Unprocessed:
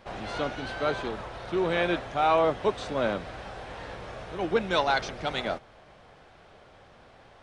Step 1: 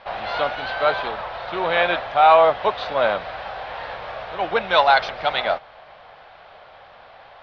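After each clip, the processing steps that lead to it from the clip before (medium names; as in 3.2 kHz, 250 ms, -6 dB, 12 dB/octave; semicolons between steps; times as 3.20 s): steep low-pass 4.6 kHz 36 dB/octave; resonant low shelf 470 Hz -11 dB, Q 1.5; trim +8.5 dB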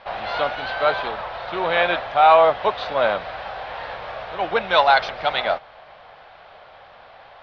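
no audible change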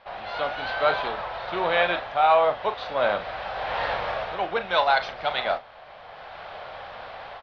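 level rider gain up to 14.5 dB; doubling 39 ms -11 dB; trim -8 dB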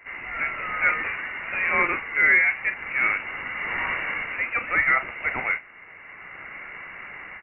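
frequency inversion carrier 2.8 kHz; pre-echo 100 ms -17 dB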